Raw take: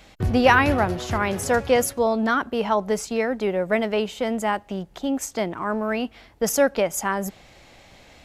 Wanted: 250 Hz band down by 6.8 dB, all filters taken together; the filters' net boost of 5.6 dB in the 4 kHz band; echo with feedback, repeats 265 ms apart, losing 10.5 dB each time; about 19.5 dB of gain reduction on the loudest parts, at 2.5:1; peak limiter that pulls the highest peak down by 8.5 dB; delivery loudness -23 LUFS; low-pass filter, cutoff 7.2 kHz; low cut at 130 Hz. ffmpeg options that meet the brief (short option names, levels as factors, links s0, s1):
-af "highpass=130,lowpass=7200,equalizer=f=250:t=o:g=-7.5,equalizer=f=4000:t=o:g=8.5,acompressor=threshold=0.00794:ratio=2.5,alimiter=level_in=1.78:limit=0.0631:level=0:latency=1,volume=0.562,aecho=1:1:265|530|795:0.299|0.0896|0.0269,volume=7.08"